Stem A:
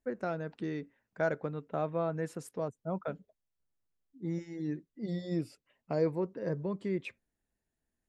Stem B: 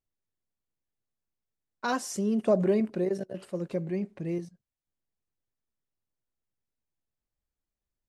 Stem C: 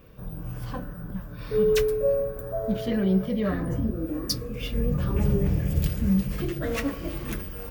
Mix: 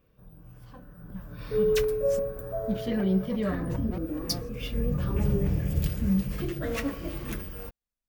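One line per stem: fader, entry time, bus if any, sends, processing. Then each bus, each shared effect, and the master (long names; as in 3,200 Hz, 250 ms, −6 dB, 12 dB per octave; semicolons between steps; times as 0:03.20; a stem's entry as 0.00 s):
muted
−3.5 dB, 0.00 s, no send, lower of the sound and its delayed copy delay 4.1 ms; gate with flip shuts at −25 dBFS, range −32 dB
0:00.77 −14.5 dB → 0:01.32 −2.5 dB, 0.00 s, no send, no processing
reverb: not used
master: no processing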